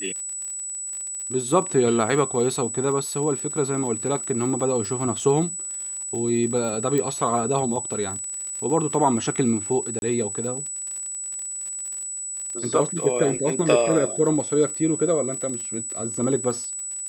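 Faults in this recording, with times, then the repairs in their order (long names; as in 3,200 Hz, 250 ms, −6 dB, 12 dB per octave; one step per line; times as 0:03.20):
surface crackle 42 per second −31 dBFS
whistle 7,900 Hz −29 dBFS
0:06.98: click −12 dBFS
0:09.99–0:10.02: drop-out 31 ms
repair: click removal
notch filter 7,900 Hz, Q 30
repair the gap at 0:09.99, 31 ms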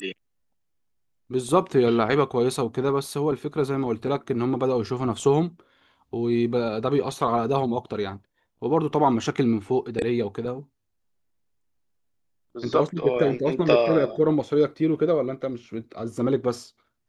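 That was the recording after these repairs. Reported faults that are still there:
none of them is left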